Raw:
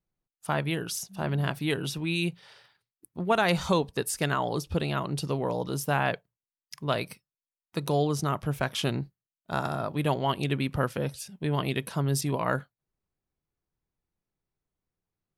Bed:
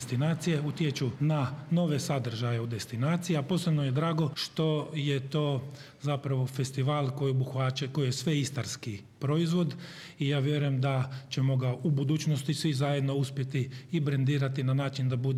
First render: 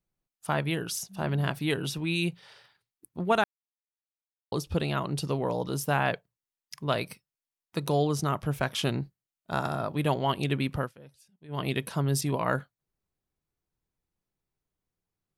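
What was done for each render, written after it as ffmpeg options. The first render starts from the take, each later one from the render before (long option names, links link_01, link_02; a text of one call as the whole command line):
ffmpeg -i in.wav -filter_complex "[0:a]asplit=5[link_01][link_02][link_03][link_04][link_05];[link_01]atrim=end=3.44,asetpts=PTS-STARTPTS,afade=type=out:start_time=3.436:duration=0.004:curve=hsin[link_06];[link_02]atrim=start=3.44:end=4.52,asetpts=PTS-STARTPTS,volume=0[link_07];[link_03]atrim=start=4.52:end=10.92,asetpts=PTS-STARTPTS,afade=type=in:duration=0.004:curve=hsin,afade=type=out:start_time=6.15:duration=0.25:curve=qsin:silence=0.0944061[link_08];[link_04]atrim=start=10.92:end=11.48,asetpts=PTS-STARTPTS,volume=-20.5dB[link_09];[link_05]atrim=start=11.48,asetpts=PTS-STARTPTS,afade=type=in:duration=0.25:curve=qsin:silence=0.0944061[link_10];[link_06][link_07][link_08][link_09][link_10]concat=n=5:v=0:a=1" out.wav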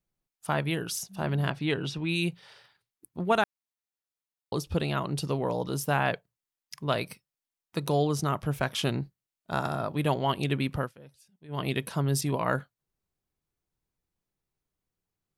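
ffmpeg -i in.wav -filter_complex "[0:a]asettb=1/sr,asplit=3[link_01][link_02][link_03];[link_01]atrim=end=1.504[link_04];[link_02]atrim=start=1.5:end=2.09,asetpts=PTS-STARTPTS,afade=type=in:duration=0.004:curve=qsin,afade=type=out:start_time=0.586:duration=0.004:curve=qsin,lowpass=5000[link_05];[link_03]atrim=start=2.086[link_06];[link_04][link_05]acrossfade=duration=0.004:curve1=hsin:curve2=qsin[link_07];[link_07][link_06]acrossfade=duration=0.004:curve1=qsin:curve2=hsin" out.wav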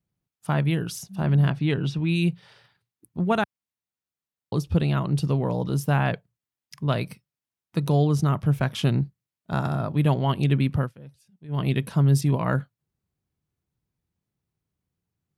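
ffmpeg -i in.wav -af "highpass=77,bass=frequency=250:gain=11,treble=frequency=4000:gain=-3" out.wav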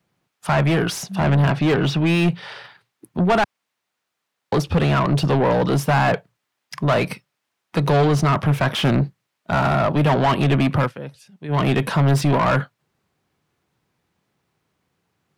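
ffmpeg -i in.wav -filter_complex "[0:a]acrossover=split=360|1600[link_01][link_02][link_03];[link_03]asoftclip=type=tanh:threshold=-35.5dB[link_04];[link_01][link_02][link_04]amix=inputs=3:normalize=0,asplit=2[link_05][link_06];[link_06]highpass=frequency=720:poles=1,volume=28dB,asoftclip=type=tanh:threshold=-8.5dB[link_07];[link_05][link_07]amix=inputs=2:normalize=0,lowpass=frequency=2100:poles=1,volume=-6dB" out.wav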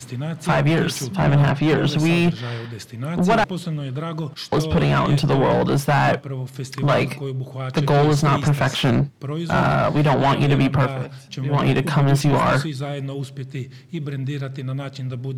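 ffmpeg -i in.wav -i bed.wav -filter_complex "[1:a]volume=1dB[link_01];[0:a][link_01]amix=inputs=2:normalize=0" out.wav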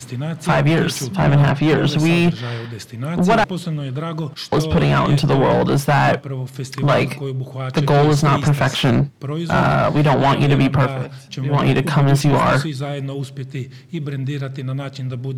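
ffmpeg -i in.wav -af "volume=2.5dB" out.wav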